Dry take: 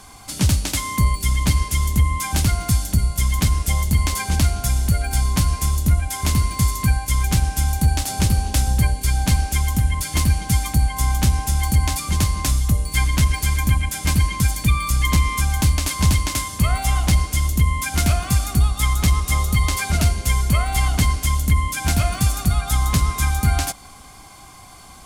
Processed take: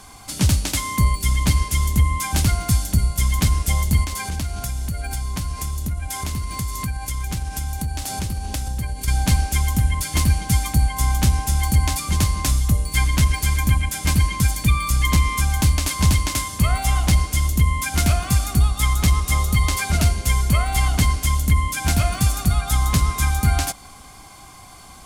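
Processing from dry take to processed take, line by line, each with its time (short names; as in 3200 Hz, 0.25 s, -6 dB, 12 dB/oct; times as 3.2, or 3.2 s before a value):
4.03–9.08 compressor 4:1, threshold -23 dBFS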